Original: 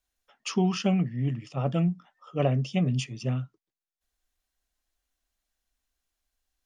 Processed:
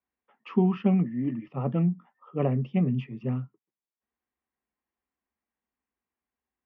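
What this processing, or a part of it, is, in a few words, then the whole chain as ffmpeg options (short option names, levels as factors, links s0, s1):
bass cabinet: -filter_complex "[0:a]highpass=f=79:w=0.5412,highpass=f=79:w=1.3066,equalizer=f=99:t=q:w=4:g=-10,equalizer=f=220:t=q:w=4:g=6,equalizer=f=400:t=q:w=4:g=3,equalizer=f=640:t=q:w=4:g=-7,equalizer=f=970:t=q:w=4:g=3,equalizer=f=1500:t=q:w=4:g=-7,lowpass=f=2100:w=0.5412,lowpass=f=2100:w=1.3066,asettb=1/sr,asplit=3[s0][s1][s2];[s0]atrim=end=1.044[s3];[s1]atrim=start=1.04:end=1.48,asetpts=PTS-STARTPTS,afade=t=in:d=0.004:c=qsin,afade=t=out:st=0.436:d=0.004:c=qsin,aecho=1:1:3.4:0.65,atrim=end_sample=19404[s4];[s2]atrim=start=1.476[s5];[s3][s4]acrossfade=d=0.004:c1=hsin:c2=qsin[s6];[s6][s5]acrossfade=d=0.004:c1=qsin:c2=hsin"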